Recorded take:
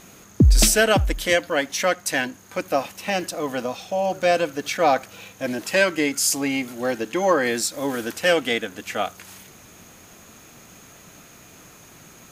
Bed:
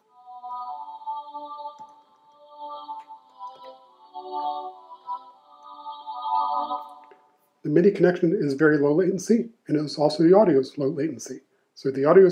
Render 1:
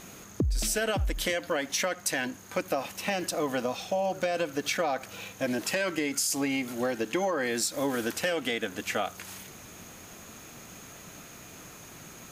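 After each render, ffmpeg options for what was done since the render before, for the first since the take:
-af "alimiter=limit=-13dB:level=0:latency=1:release=63,acompressor=threshold=-25dB:ratio=6"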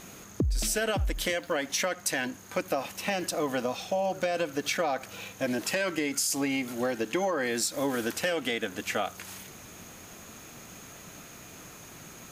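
-filter_complex "[0:a]asettb=1/sr,asplit=3[a][b][c];[a]atrim=end=1.124[d];[b]atrim=start=1.12:end=1.54,asetpts=PTS-STARTPTS,afade=t=in:d=0.004:c=qsin,afade=t=out:st=0.416:d=0.004:c=qsin,aeval=exprs='sgn(val(0))*max(abs(val(0))-0.00178,0)':c=same[e];[c]atrim=start=1.536[f];[d][e]acrossfade=d=0.004:c1=hsin:c2=qsin[g];[g][f]acrossfade=d=0.004:c1=qsin:c2=hsin"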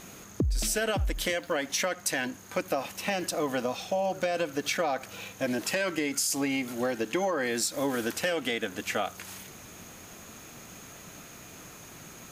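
-af anull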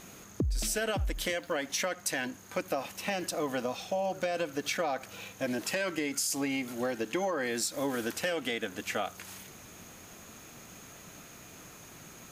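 -af "volume=-3dB"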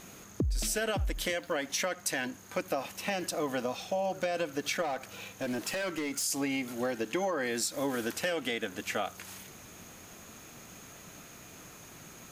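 -filter_complex "[0:a]asettb=1/sr,asplit=3[a][b][c];[a]atrim=end=4.824[d];[b]atrim=start=4.82:end=6.23,asetpts=PTS-STARTPTS,afade=t=in:d=0.004:c=qsin,afade=t=out:st=1.406:d=0.004:c=qsin,asoftclip=type=hard:threshold=-29dB[e];[c]atrim=start=6.226[f];[d][e]acrossfade=d=0.004:c1=hsin:c2=qsin[g];[g][f]acrossfade=d=0.004:c1=qsin:c2=hsin"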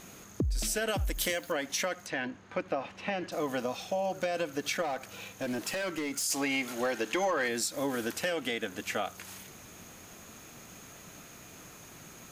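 -filter_complex "[0:a]asettb=1/sr,asplit=3[a][b][c];[a]atrim=end=0.884[d];[b]atrim=start=0.88:end=1.52,asetpts=PTS-STARTPTS,afade=t=in:d=0.004:c=qsin,afade=t=out:st=0.636:d=0.004:c=qsin,highshelf=f=7.6k:g=11.5[e];[c]atrim=start=1.516[f];[d][e]acrossfade=d=0.004:c1=hsin:c2=qsin[g];[g][f]acrossfade=d=0.004:c1=qsin:c2=hsin,asettb=1/sr,asplit=3[h][i][j];[h]atrim=end=2.064[k];[i]atrim=start=2.06:end=3.32,asetpts=PTS-STARTPTS,afade=t=in:d=0.004:c=qsin,afade=t=out:st=1.256:d=0.004:c=qsin,lowpass=3k[l];[j]atrim=start=3.316[m];[k][l]acrossfade=d=0.004:c1=hsin:c2=qsin[n];[n][m]acrossfade=d=0.004:c1=qsin:c2=hsin,asplit=3[o][p][q];[o]afade=t=out:st=6.29:d=0.02[r];[p]asplit=2[s][t];[t]highpass=f=720:p=1,volume=11dB,asoftclip=type=tanh:threshold=-18.5dB[u];[s][u]amix=inputs=2:normalize=0,lowpass=f=7.4k:p=1,volume=-6dB,afade=t=in:st=6.29:d=0.02,afade=t=out:st=7.47:d=0.02[v];[q]afade=t=in:st=7.47:d=0.02[w];[r][v][w]amix=inputs=3:normalize=0"

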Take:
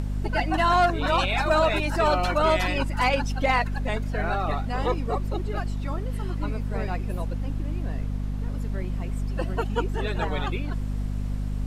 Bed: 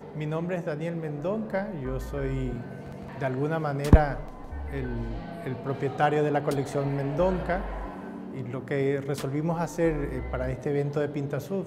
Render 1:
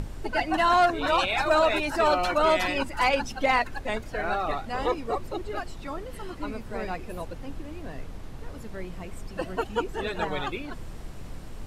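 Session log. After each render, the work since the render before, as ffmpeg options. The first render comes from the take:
-af "bandreject=f=50:t=h:w=6,bandreject=f=100:t=h:w=6,bandreject=f=150:t=h:w=6,bandreject=f=200:t=h:w=6,bandreject=f=250:t=h:w=6"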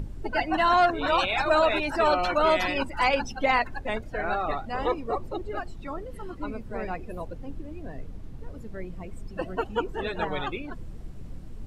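-af "afftdn=nr=11:nf=-40"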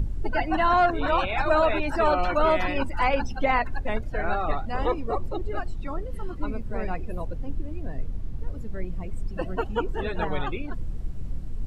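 -filter_complex "[0:a]acrossover=split=2600[a][b];[b]acompressor=threshold=-43dB:ratio=4:attack=1:release=60[c];[a][c]amix=inputs=2:normalize=0,lowshelf=f=120:g=10"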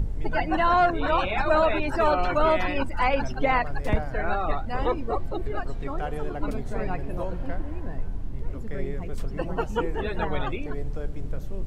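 -filter_complex "[1:a]volume=-10dB[a];[0:a][a]amix=inputs=2:normalize=0"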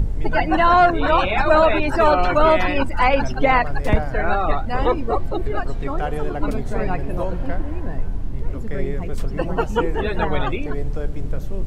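-af "volume=6.5dB"

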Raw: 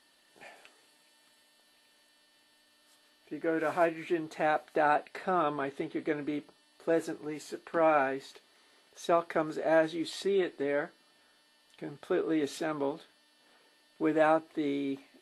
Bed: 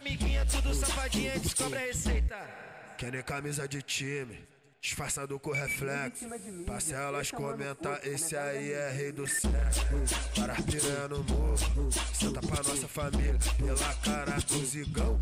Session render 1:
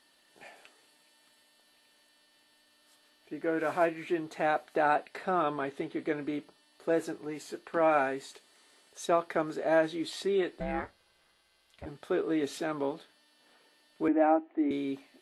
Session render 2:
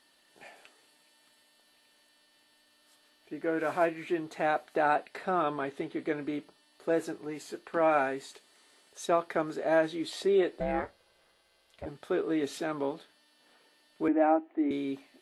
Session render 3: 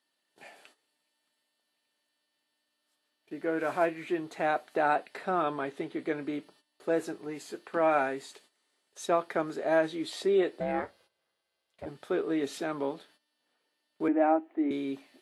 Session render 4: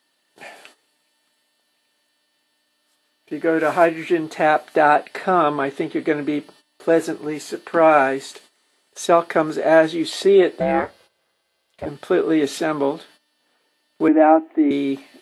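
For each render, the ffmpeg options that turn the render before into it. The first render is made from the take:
-filter_complex "[0:a]asettb=1/sr,asplit=3[a][b][c];[a]atrim=end=7.914[d];[b]atrim=start=7.91:end=9.06,asetpts=PTS-STARTPTS,afade=t=in:d=0.004:c=qsin,afade=t=out:st=1.146:d=0.004:c=qsin,equalizer=f=8.1k:t=o:w=0.69:g=8.5[e];[c]atrim=start=9.056[f];[d][e]acrossfade=d=0.004:c1=hsin:c2=qsin[g];[g][f]acrossfade=d=0.004:c1=qsin:c2=hsin,asplit=3[h][i][j];[h]afade=t=out:st=10.59:d=0.02[k];[i]aeval=exprs='val(0)*sin(2*PI*240*n/s)':c=same,afade=t=in:st=10.59:d=0.02,afade=t=out:st=11.85:d=0.02[l];[j]afade=t=in:st=11.85:d=0.02[m];[k][l][m]amix=inputs=3:normalize=0,asettb=1/sr,asplit=3[n][o][p];[n]atrim=end=14.084[q];[o]atrim=start=14.08:end=14.71,asetpts=PTS-STARTPTS,afade=t=in:d=0.004:c=qsin,afade=t=out:st=0.626:d=0.004:c=qsin,highpass=f=270:w=0.5412,highpass=f=270:w=1.3066,equalizer=f=300:t=q:w=4:g=8,equalizer=f=450:t=q:w=4:g=-8,equalizer=f=800:t=q:w=4:g=4,equalizer=f=1.1k:t=q:w=4:g=-8,equalizer=f=1.6k:t=q:w=4:g=-7,lowpass=f=2.1k:w=0.5412,lowpass=f=2.1k:w=1.3066[r];[p]atrim=start=14.706[s];[q][r]acrossfade=d=0.004:c1=hsin:c2=qsin[t];[t][s]acrossfade=d=0.004:c1=qsin:c2=hsin"
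-filter_complex "[0:a]asettb=1/sr,asplit=3[a][b][c];[a]atrim=end=10.124[d];[b]atrim=start=10.12:end=11.89,asetpts=PTS-STARTPTS,afade=t=in:d=0.004:c=qsin,afade=t=out:st=1.766:d=0.004:c=qsin,equalizer=f=530:t=o:w=0.99:g=6.5[e];[c]atrim=start=11.886[f];[d][e]acrossfade=d=0.004:c1=hsin:c2=qsin[g];[g][f]acrossfade=d=0.004:c1=qsin:c2=hsin"
-af "agate=range=-14dB:threshold=-59dB:ratio=16:detection=peak,highpass=100"
-af "volume=12dB,alimiter=limit=-3dB:level=0:latency=1"

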